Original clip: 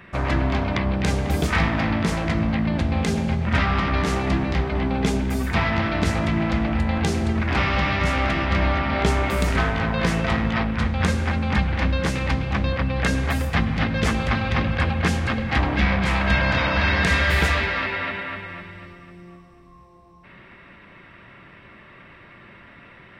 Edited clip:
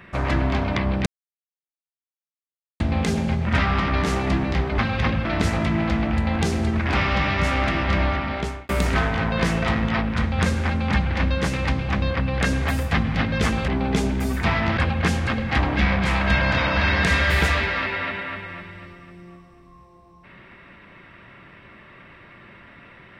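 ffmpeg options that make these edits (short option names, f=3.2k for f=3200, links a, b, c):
-filter_complex "[0:a]asplit=8[a][b][c][d][e][f][g][h];[a]atrim=end=1.06,asetpts=PTS-STARTPTS,afade=t=out:st=1.056:d=0.004:c=hsin[i];[b]atrim=start=1.06:end=2.8,asetpts=PTS-STARTPTS,volume=0[j];[c]atrim=start=2.8:end=4.782,asetpts=PTS-STARTPTS,afade=t=in:d=0.004:c=hsin[k];[d]atrim=start=14.298:end=14.772[l];[e]atrim=start=5.868:end=9.31,asetpts=PTS-STARTPTS,afade=t=out:st=2.572:d=0.87:c=qsin[m];[f]atrim=start=9.31:end=14.302,asetpts=PTS-STARTPTS,afade=t=in:d=0.004:c=hsin[n];[g]atrim=start=4.778:end=5.872[o];[h]atrim=start=14.768[p];[i][j][k]concat=n=3:v=0:a=1[q];[q][l]acrossfade=d=0.004:c1=hsin:c2=hsin[r];[m][n]concat=n=2:v=0:a=1[s];[r][s]acrossfade=d=0.004:c1=hsin:c2=hsin[t];[t][o]acrossfade=d=0.004:c1=hsin:c2=hsin[u];[u][p]acrossfade=d=0.004:c1=hsin:c2=hsin"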